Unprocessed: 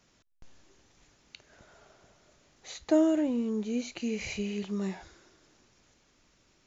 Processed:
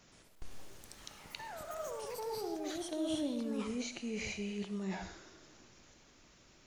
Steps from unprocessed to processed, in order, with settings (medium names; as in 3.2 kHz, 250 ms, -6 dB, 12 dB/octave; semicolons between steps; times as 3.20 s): reverse; compression 10:1, threshold -40 dBFS, peak gain reduction 21 dB; reverse; ever faster or slower copies 121 ms, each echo +6 st, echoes 3; reverberation, pre-delay 25 ms, DRR 10 dB; trim +3.5 dB